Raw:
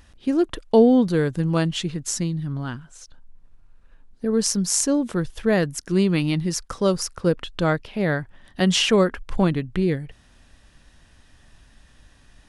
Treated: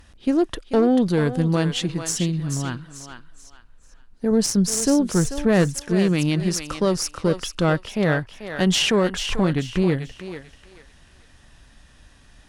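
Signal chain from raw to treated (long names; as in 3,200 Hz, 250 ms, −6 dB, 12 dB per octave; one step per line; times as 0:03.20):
tube saturation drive 11 dB, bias 0.45
brickwall limiter −14 dBFS, peak gain reduction 6 dB
0:04.31–0:05.83: low-shelf EQ 160 Hz +7 dB
feedback echo with a high-pass in the loop 439 ms, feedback 30%, high-pass 620 Hz, level −7 dB
level +3.5 dB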